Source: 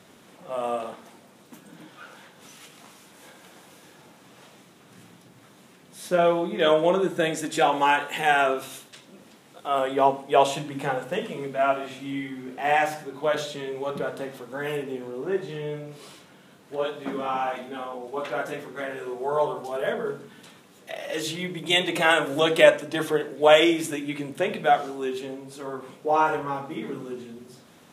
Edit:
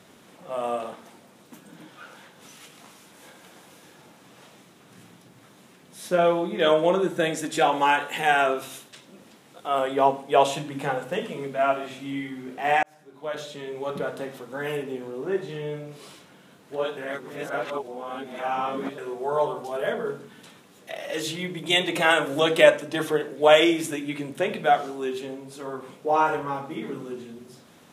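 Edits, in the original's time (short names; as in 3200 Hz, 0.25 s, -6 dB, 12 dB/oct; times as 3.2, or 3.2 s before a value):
12.83–13.94 fade in
16.97–18.98 reverse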